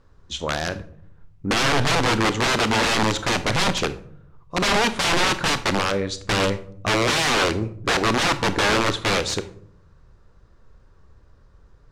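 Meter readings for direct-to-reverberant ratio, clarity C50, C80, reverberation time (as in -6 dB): 11.5 dB, 14.5 dB, 18.5 dB, 0.60 s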